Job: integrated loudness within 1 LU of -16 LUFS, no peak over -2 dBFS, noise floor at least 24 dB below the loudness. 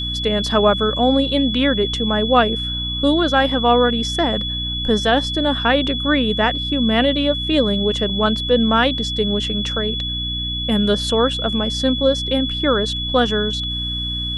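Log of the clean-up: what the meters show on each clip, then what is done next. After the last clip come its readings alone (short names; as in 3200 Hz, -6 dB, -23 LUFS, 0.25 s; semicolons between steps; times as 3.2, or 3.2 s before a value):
hum 60 Hz; harmonics up to 300 Hz; hum level -25 dBFS; steady tone 3400 Hz; tone level -23 dBFS; loudness -18.0 LUFS; peak -1.5 dBFS; loudness target -16.0 LUFS
-> notches 60/120/180/240/300 Hz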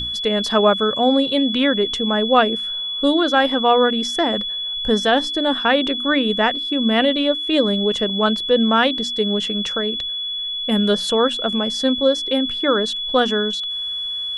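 hum none; steady tone 3400 Hz; tone level -23 dBFS
-> notch 3400 Hz, Q 30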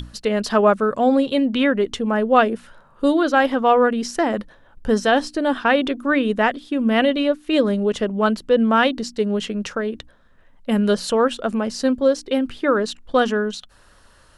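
steady tone none; loudness -19.5 LUFS; peak -1.5 dBFS; loudness target -16.0 LUFS
-> gain +3.5 dB; limiter -2 dBFS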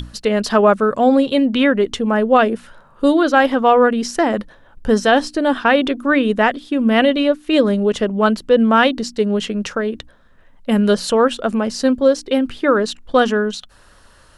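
loudness -16.5 LUFS; peak -2.0 dBFS; noise floor -49 dBFS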